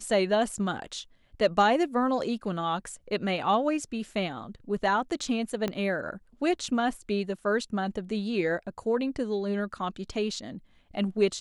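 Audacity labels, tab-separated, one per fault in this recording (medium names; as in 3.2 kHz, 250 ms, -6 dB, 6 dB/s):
5.680000	5.680000	pop -16 dBFS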